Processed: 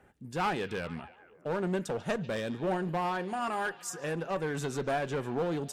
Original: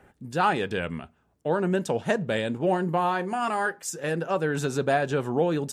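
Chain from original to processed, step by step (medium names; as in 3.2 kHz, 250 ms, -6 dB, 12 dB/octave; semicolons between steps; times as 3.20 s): one-sided clip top -23.5 dBFS; repeats whose band climbs or falls 144 ms, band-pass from 3.7 kHz, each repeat -0.7 oct, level -12 dB; trim -5.5 dB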